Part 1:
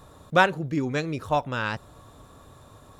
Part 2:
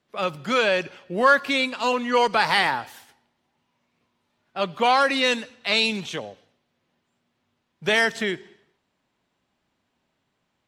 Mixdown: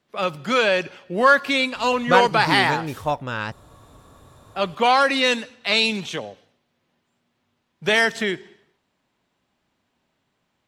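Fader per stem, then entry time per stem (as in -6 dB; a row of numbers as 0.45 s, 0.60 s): +0.5 dB, +2.0 dB; 1.75 s, 0.00 s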